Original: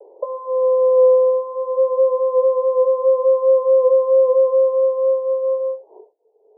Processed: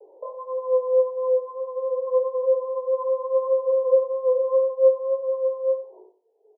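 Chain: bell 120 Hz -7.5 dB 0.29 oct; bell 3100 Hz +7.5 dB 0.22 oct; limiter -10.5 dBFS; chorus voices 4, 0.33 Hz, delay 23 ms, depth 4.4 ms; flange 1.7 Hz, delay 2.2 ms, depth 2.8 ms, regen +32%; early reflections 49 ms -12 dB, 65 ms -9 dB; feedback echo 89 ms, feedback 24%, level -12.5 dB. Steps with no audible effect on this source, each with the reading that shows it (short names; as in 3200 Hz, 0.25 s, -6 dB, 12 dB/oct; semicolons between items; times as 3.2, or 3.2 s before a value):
bell 120 Hz: input band starts at 480 Hz; bell 3100 Hz: input band ends at 1100 Hz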